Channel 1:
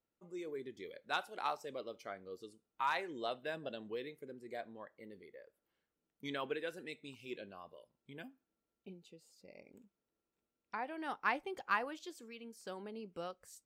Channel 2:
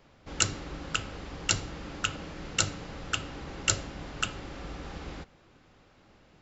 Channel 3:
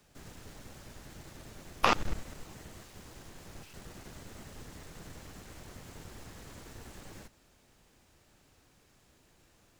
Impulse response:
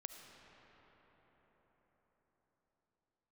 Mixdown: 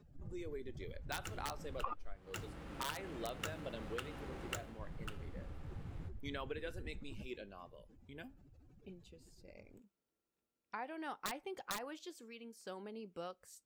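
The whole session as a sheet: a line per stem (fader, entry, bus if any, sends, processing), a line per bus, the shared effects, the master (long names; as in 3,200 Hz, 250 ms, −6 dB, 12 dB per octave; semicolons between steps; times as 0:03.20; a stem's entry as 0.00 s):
−1.5 dB, 0.00 s, no send, wrap-around overflow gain 26 dB
−6.5 dB, 0.85 s, no send, running median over 9 samples; automatic ducking −9 dB, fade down 0.25 s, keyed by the third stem
+3.0 dB, 0.00 s, muted 0:02.16–0:04.79, no send, expanding power law on the bin magnitudes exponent 2.7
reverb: not used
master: downward compressor 8 to 1, threshold −38 dBFS, peak gain reduction 19.5 dB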